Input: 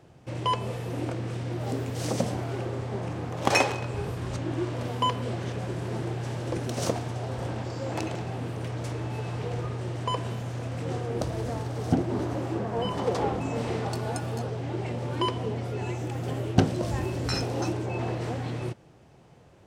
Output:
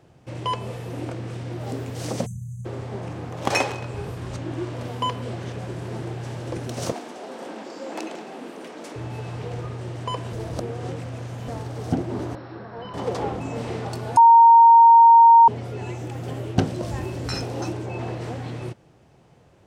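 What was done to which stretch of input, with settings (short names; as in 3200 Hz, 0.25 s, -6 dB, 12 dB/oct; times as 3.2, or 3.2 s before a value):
2.26–2.65 spectral delete 210–6000 Hz
6.92–8.96 steep high-pass 200 Hz 48 dB/oct
10.33–11.48 reverse
12.35–12.94 rippled Chebyshev low-pass 5600 Hz, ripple 9 dB
14.17–15.48 bleep 925 Hz -7.5 dBFS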